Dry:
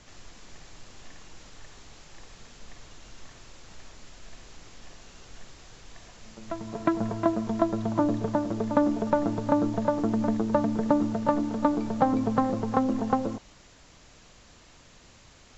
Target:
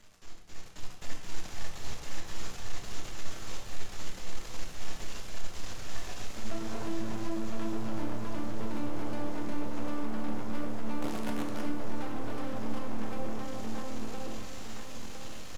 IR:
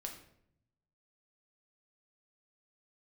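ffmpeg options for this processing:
-filter_complex "[0:a]acompressor=threshold=-36dB:ratio=10,aeval=exprs='max(val(0),0)':c=same,asplit=3[a][b][c];[a]afade=t=out:st=11.01:d=0.02[d];[b]highpass=150,afade=t=in:st=11.01:d=0.02,afade=t=out:st=11.61:d=0.02[e];[c]afade=t=in:st=11.61:d=0.02[f];[d][e][f]amix=inputs=3:normalize=0,aecho=1:1:1012|2024|3036|4048:0.562|0.163|0.0473|0.0137,asoftclip=type=hard:threshold=-40dB,acrusher=bits=8:dc=4:mix=0:aa=0.000001,dynaudnorm=f=490:g=3:m=11.5dB[g];[1:a]atrim=start_sample=2205,atrim=end_sample=4410,asetrate=26901,aresample=44100[h];[g][h]afir=irnorm=-1:irlink=0,volume=-1.5dB"

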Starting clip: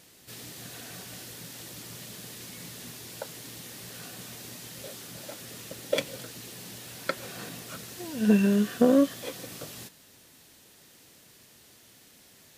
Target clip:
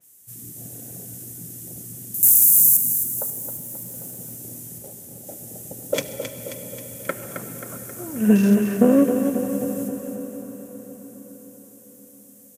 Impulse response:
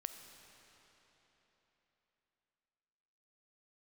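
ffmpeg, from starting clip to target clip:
-filter_complex "[0:a]asettb=1/sr,asplit=3[a][b][c];[a]atrim=end=2.144[d];[b]atrim=start=2.14:end=2.77,asetpts=PTS-STARTPTS,afade=t=in:d=0.004:c=qsin,afade=t=out:st=0.626:d=0.004:c=qsin,aemphasis=mode=production:type=50fm[e];[c]atrim=start=2.766[f];[d][e]acrossfade=d=0.004:c1=hsin:c2=qsin[g];[g][f]acrossfade=d=0.004:c1=qsin:c2=hsin,afwtdn=0.00891,aexciter=amount=5.3:drive=9.6:freq=6.4k,asettb=1/sr,asplit=3[h][i][j];[h]atrim=end=4.784[k];[i]atrim=start=4.78:end=5.27,asetpts=PTS-STARTPTS,afade=t=in:d=0.004:c=qsin,afade=t=out:st=0.486:d=0.004:c=qsin,aeval=exprs='0.0473*(cos(1*acos(clip(val(0)/0.0473,-1,1)))-cos(1*PI/2))+0.00668*(cos(3*acos(clip(val(0)/0.0473,-1,1)))-cos(3*PI/2))':c=same[l];[j]atrim=start=5.266[m];[k][l]acrossfade=d=0.004:c1=hsin:c2=qsin[n];[n][m]acrossfade=d=0.004:c1=qsin:c2=hsin,aecho=1:1:267|534|801|1068|1335|1602|1869:0.398|0.219|0.12|0.0662|0.0364|0.02|0.011,asplit=2[o][p];[1:a]atrim=start_sample=2205,asetrate=27783,aresample=44100,lowshelf=f=420:g=6.5[q];[p][q]afir=irnorm=-1:irlink=0,volume=3.5dB[r];[o][r]amix=inputs=2:normalize=0,adynamicequalizer=threshold=0.02:dfrequency=4000:dqfactor=0.7:tfrequency=4000:tqfactor=0.7:attack=5:release=100:ratio=0.375:range=1.5:mode=cutabove:tftype=highshelf,volume=-5dB"

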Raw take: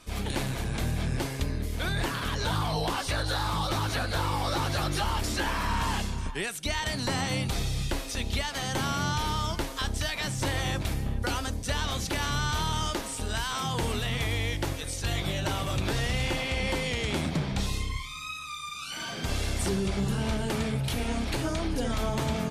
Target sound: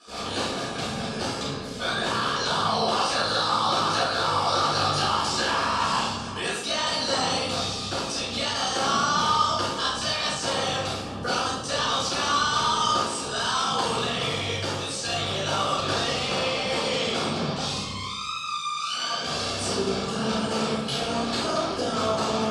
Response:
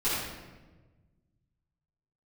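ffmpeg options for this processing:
-filter_complex "[0:a]tremolo=f=61:d=0.857,highpass=260,equalizer=f=310:t=q:w=4:g=-8,equalizer=f=1.2k:t=q:w=4:g=8,equalizer=f=2k:t=q:w=4:g=-9,equalizer=f=3k:t=q:w=4:g=3,equalizer=f=4.9k:t=q:w=4:g=7,lowpass=f=9.2k:w=0.5412,lowpass=f=9.2k:w=1.3066[a];[1:a]atrim=start_sample=2205,asetrate=70560,aresample=44100[b];[a][b]afir=irnorm=-1:irlink=0,volume=2.5dB"

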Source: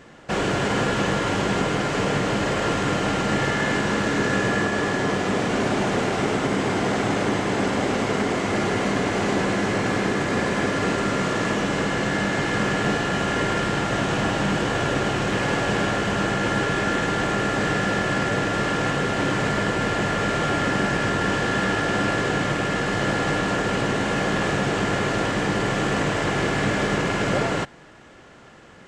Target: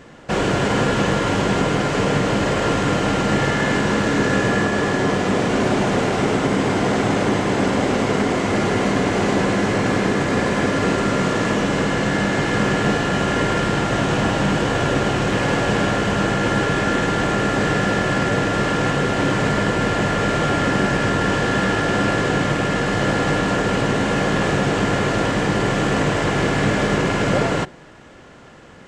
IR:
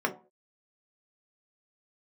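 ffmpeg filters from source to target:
-filter_complex "[0:a]lowshelf=f=200:g=3.5,asplit=2[a][b];[1:a]atrim=start_sample=2205,lowpass=1.1k[c];[b][c]afir=irnorm=-1:irlink=0,volume=-24.5dB[d];[a][d]amix=inputs=2:normalize=0,volume=2.5dB"

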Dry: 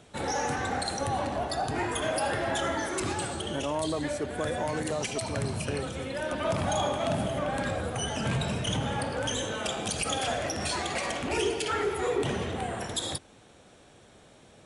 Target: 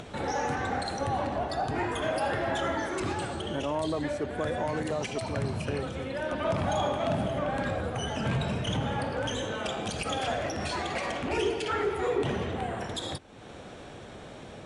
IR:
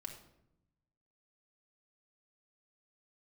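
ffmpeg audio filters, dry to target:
-af "aemphasis=mode=reproduction:type=50fm,acompressor=mode=upward:threshold=-33dB:ratio=2.5"

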